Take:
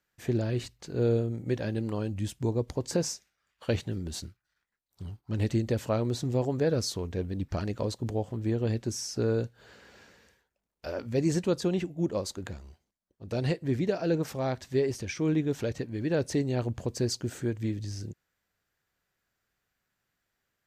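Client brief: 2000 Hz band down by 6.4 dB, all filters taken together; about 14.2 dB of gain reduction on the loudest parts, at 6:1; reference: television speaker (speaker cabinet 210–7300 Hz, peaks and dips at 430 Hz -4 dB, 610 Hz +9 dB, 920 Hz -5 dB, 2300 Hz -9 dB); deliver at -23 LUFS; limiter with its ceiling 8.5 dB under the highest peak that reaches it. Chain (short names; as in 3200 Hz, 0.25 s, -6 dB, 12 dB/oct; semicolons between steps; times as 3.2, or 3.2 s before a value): bell 2000 Hz -5.5 dB; compressor 6:1, threshold -38 dBFS; limiter -34.5 dBFS; speaker cabinet 210–7300 Hz, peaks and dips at 430 Hz -4 dB, 610 Hz +9 dB, 920 Hz -5 dB, 2300 Hz -9 dB; gain +23.5 dB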